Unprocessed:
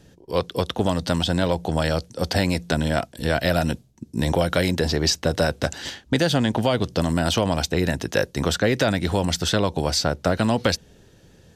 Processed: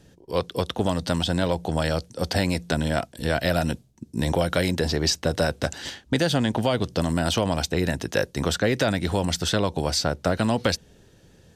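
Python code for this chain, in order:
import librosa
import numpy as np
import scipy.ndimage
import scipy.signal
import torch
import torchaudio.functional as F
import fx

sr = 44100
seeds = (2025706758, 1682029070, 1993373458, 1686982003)

y = fx.peak_eq(x, sr, hz=8800.0, db=2.5, octaves=0.23)
y = F.gain(torch.from_numpy(y), -2.0).numpy()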